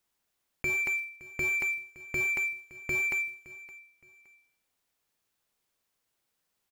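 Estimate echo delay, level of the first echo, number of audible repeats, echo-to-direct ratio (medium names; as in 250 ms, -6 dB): 567 ms, -19.0 dB, 2, -18.5 dB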